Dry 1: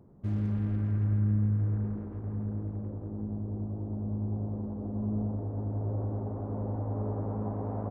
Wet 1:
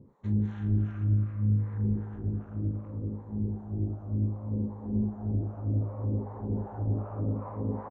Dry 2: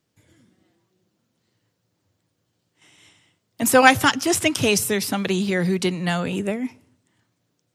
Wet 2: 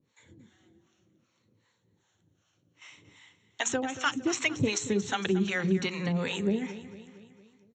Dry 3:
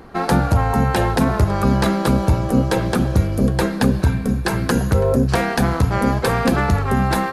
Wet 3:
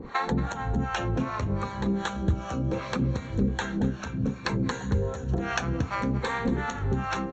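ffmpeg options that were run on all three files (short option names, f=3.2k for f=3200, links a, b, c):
-filter_complex "[0:a]afftfilt=real='re*pow(10,6/40*sin(2*PI*(0.96*log(max(b,1)*sr/1024/100)/log(2)-(-0.66)*(pts-256)/sr)))':imag='im*pow(10,6/40*sin(2*PI*(0.96*log(max(b,1)*sr/1024/100)/log(2)-(-0.66)*(pts-256)/sr)))':win_size=1024:overlap=0.75,equalizer=f=660:w=3.7:g=-6,bandreject=f=60:t=h:w=6,bandreject=f=120:t=h:w=6,bandreject=f=180:t=h:w=6,bandreject=f=240:t=h:w=6,bandreject=f=300:t=h:w=6,bandreject=f=360:t=h:w=6,bandreject=f=420:t=h:w=6,bandreject=f=480:t=h:w=6,acompressor=threshold=-26dB:ratio=12,acrossover=split=590[a][b];[a]aeval=exprs='val(0)*(1-1/2+1/2*cos(2*PI*2.6*n/s))':c=same[c];[b]aeval=exprs='val(0)*(1-1/2-1/2*cos(2*PI*2.6*n/s))':c=same[d];[c][d]amix=inputs=2:normalize=0,asuperstop=centerf=4900:order=4:qfactor=4.8,aecho=1:1:229|458|687|916|1145:0.178|0.0978|0.0538|0.0296|0.0163,aresample=16000,aresample=44100,volume=6dB"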